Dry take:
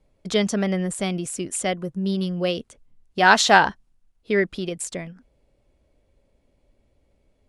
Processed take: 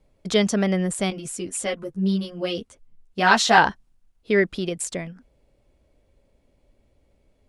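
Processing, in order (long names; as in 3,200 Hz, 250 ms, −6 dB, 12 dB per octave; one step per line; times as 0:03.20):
0:01.10–0:03.58: string-ensemble chorus
level +1.5 dB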